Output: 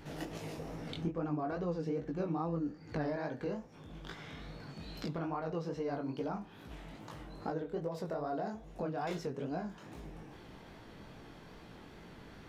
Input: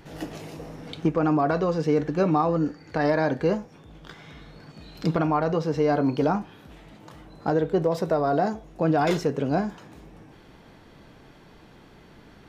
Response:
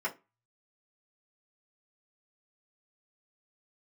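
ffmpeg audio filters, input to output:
-filter_complex "[0:a]asettb=1/sr,asplit=3[a][b][c];[a]atrim=end=0.964[d];[b]atrim=start=0.96:end=3.17,asetpts=PTS-STARTPTS,afade=t=in:d=0.004:c=qsin,afade=t=out:st=2.206:d=0.004:c=qsin,lowshelf=f=430:g=7[e];[c]atrim=start=3.166[f];[d][e]acrossfade=d=0.004:c1=hsin:c2=qsin[g];[g][f]acrossfade=d=0.004:c1=qsin:c2=hsin,acompressor=threshold=-37dB:ratio=3,flanger=delay=17:depth=7.4:speed=2.4,volume=1dB"

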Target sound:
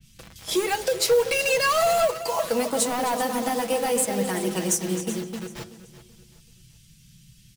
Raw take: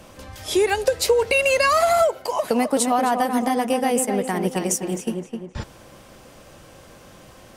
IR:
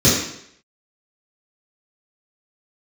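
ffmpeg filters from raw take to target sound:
-filter_complex "[0:a]acrossover=split=180|2600[a][b][c];[a]acompressor=threshold=-44dB:ratio=6[d];[b]acrusher=bits=5:mix=0:aa=0.000001[e];[d][e][c]amix=inputs=3:normalize=0,aecho=1:1:381|762|1143:0.178|0.0605|0.0206,asoftclip=type=hard:threshold=-15.5dB,aecho=1:1:6.1:0.54,acrusher=bits=7:mode=log:mix=0:aa=0.000001,flanger=delay=2.6:depth=5.8:regen=-80:speed=0.45:shape=triangular,asplit=2[f][g];[1:a]atrim=start_sample=2205,asetrate=39690,aresample=44100,lowshelf=f=340:g=11.5[h];[g][h]afir=irnorm=-1:irlink=0,volume=-43dB[i];[f][i]amix=inputs=2:normalize=0,adynamicequalizer=threshold=0.00891:dfrequency=2900:dqfactor=0.7:tfrequency=2900:tqfactor=0.7:attack=5:release=100:ratio=0.375:range=2:mode=boostabove:tftype=highshelf"

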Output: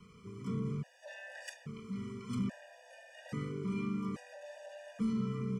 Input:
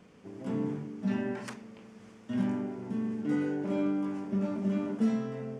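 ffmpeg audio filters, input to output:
-filter_complex "[0:a]equalizer=f=570:w=2.2:g=-14,bandreject=f=790:w=25,aecho=1:1:1.7:0.79,acrossover=split=290|3000[a][b][c];[b]acompressor=threshold=-43dB:ratio=6[d];[a][d][c]amix=inputs=3:normalize=0,asoftclip=type=tanh:threshold=-30dB,aecho=1:1:854:0.531,afftfilt=real='re*gt(sin(2*PI*0.6*pts/sr)*(1-2*mod(floor(b*sr/1024/490),2)),0)':imag='im*gt(sin(2*PI*0.6*pts/sr)*(1-2*mod(floor(b*sr/1024/490),2)),0)':win_size=1024:overlap=0.75,volume=2dB"

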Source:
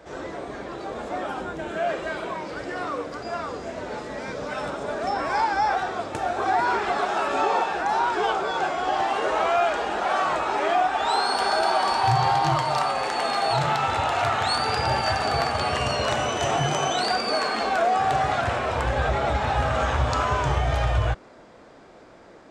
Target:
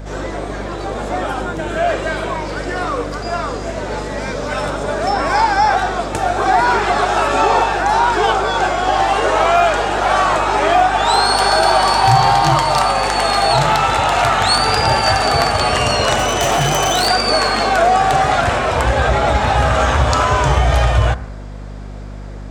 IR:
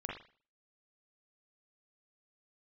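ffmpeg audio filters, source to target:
-filter_complex "[0:a]asplit=2[a][b];[1:a]atrim=start_sample=2205,asetrate=27342,aresample=44100[c];[b][c]afir=irnorm=-1:irlink=0,volume=-16.5dB[d];[a][d]amix=inputs=2:normalize=0,asettb=1/sr,asplit=3[e][f][g];[e]atrim=end=16.174[h];[f]atrim=start=16.17:end=17.08,asetpts=PTS-STARTPTS,afade=t=in:d=0.004:c=qsin,afade=t=out:st=0.906:d=0.004:c=qsin,aeval=exprs='0.141*(abs(mod(val(0)/0.141+3,4)-2)-1)':c=same[i];[g]atrim=start=17.076[j];[h][i]acrossfade=d=0.004:c1=hsin:c2=qsin[k];[k][j]acrossfade=d=0.004:c1=qsin:c2=hsin,crystalizer=i=1:c=0,aeval=exprs='val(0)+0.0158*(sin(2*PI*50*n/s)+sin(2*PI*2*50*n/s)/2+sin(2*PI*3*50*n/s)/3+sin(2*PI*4*50*n/s)/4+sin(2*PI*5*50*n/s)/5)':c=same,volume=7.5dB"

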